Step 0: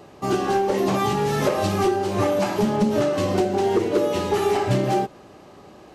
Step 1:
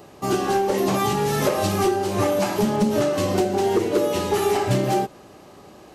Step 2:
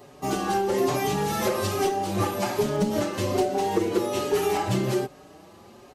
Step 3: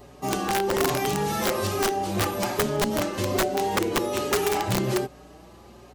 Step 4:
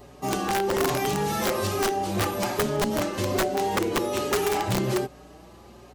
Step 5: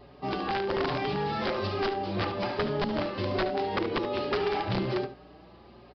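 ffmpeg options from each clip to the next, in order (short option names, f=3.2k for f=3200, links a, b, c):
-af "highshelf=f=7.9k:g=10.5"
-filter_complex "[0:a]asplit=2[a][b];[b]adelay=5.2,afreqshift=1.2[c];[a][c]amix=inputs=2:normalize=1"
-af "aeval=exprs='(mod(6.31*val(0)+1,2)-1)/6.31':c=same,aeval=exprs='val(0)+0.00224*(sin(2*PI*60*n/s)+sin(2*PI*2*60*n/s)/2+sin(2*PI*3*60*n/s)/3+sin(2*PI*4*60*n/s)/4+sin(2*PI*5*60*n/s)/5)':c=same"
-af "asoftclip=type=hard:threshold=-19dB"
-filter_complex "[0:a]asplit=2[a][b];[b]aecho=0:1:73:0.282[c];[a][c]amix=inputs=2:normalize=0,aresample=11025,aresample=44100,volume=-4dB"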